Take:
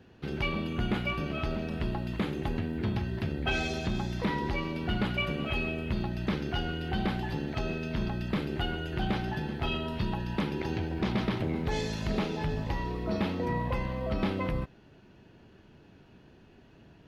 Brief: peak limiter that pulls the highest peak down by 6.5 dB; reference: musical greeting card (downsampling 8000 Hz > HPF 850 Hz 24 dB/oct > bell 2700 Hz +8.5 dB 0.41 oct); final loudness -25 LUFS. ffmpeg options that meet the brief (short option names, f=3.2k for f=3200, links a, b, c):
-af "alimiter=limit=-24dB:level=0:latency=1,aresample=8000,aresample=44100,highpass=f=850:w=0.5412,highpass=f=850:w=1.3066,equalizer=f=2.7k:t=o:w=0.41:g=8.5,volume=12dB"